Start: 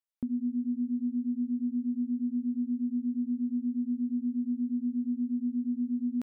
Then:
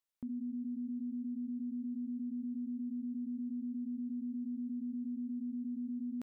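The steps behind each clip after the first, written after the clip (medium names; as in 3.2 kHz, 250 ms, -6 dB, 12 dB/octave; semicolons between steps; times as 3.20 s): peak limiter -36.5 dBFS, peak gain reduction 12 dB; trim +1.5 dB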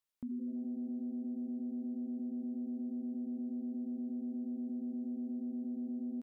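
frequency-shifting echo 83 ms, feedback 56%, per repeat +130 Hz, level -20.5 dB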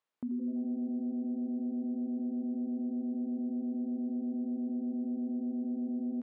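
band-pass filter 690 Hz, Q 0.5; on a send at -17 dB: reverberation RT60 1.7 s, pre-delay 24 ms; on the sum: trim +8.5 dB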